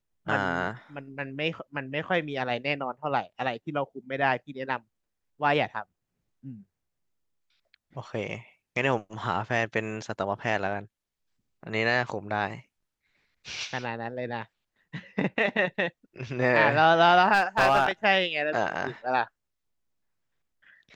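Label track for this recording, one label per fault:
17.330000	17.890000	clipping −15.5 dBFS

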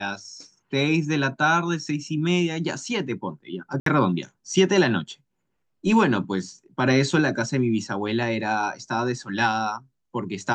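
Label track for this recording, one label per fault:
3.800000	3.860000	drop-out 63 ms

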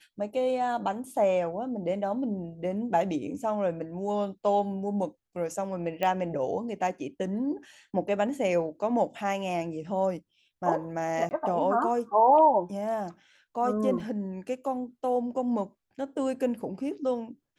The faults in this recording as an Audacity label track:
6.030000	6.030000	click −16 dBFS
11.290000	11.310000	drop-out 19 ms
14.000000	14.000000	drop-out 2.5 ms

